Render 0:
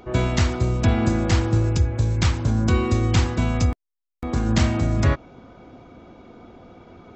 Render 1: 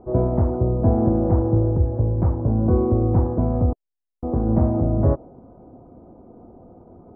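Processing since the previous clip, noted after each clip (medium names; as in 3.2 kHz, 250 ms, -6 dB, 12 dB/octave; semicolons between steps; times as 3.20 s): inverse Chebyshev low-pass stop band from 5 kHz, stop band 80 dB; dynamic bell 500 Hz, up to +6 dB, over -39 dBFS, Q 0.98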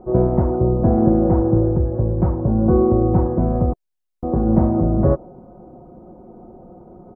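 comb 5.5 ms, depth 51%; trim +3 dB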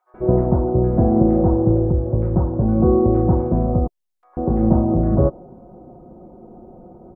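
bands offset in time highs, lows 140 ms, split 1.5 kHz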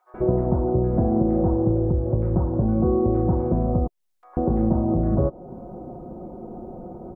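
compression 2.5:1, threshold -27 dBFS, peak gain reduction 12.5 dB; trim +5 dB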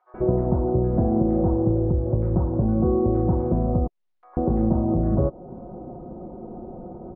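distance through air 230 m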